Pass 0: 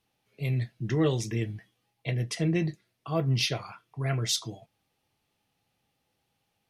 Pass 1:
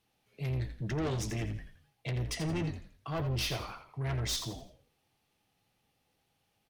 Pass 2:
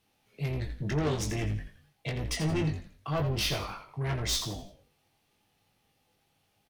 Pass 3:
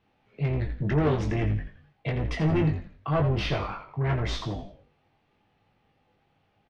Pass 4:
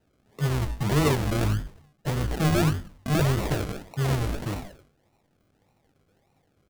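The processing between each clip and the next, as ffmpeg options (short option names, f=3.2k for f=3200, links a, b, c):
-filter_complex "[0:a]asoftclip=type=tanh:threshold=-30.5dB,asplit=5[a][b][c][d][e];[b]adelay=84,afreqshift=-63,volume=-9dB[f];[c]adelay=168,afreqshift=-126,volume=-17.6dB[g];[d]adelay=252,afreqshift=-189,volume=-26.3dB[h];[e]adelay=336,afreqshift=-252,volume=-34.9dB[i];[a][f][g][h][i]amix=inputs=5:normalize=0"
-filter_complex "[0:a]asplit=2[a][b];[b]adelay=20,volume=-5.5dB[c];[a][c]amix=inputs=2:normalize=0,volume=3dB"
-af "lowpass=2.2k,volume=5.5dB"
-af "acrusher=samples=38:mix=1:aa=0.000001:lfo=1:lforange=22.8:lforate=1.7,volume=1.5dB"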